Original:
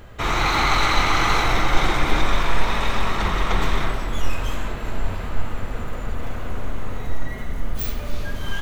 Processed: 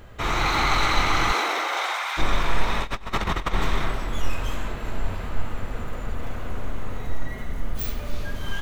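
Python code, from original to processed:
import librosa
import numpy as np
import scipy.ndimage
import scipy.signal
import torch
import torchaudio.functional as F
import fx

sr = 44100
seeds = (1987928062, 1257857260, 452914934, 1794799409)

y = fx.highpass(x, sr, hz=fx.line((1.31, 240.0), (2.17, 910.0)), slope=24, at=(1.31, 2.17), fade=0.02)
y = fx.over_compress(y, sr, threshold_db=-23.0, ratio=-0.5, at=(2.81, 3.54))
y = y * librosa.db_to_amplitude(-2.5)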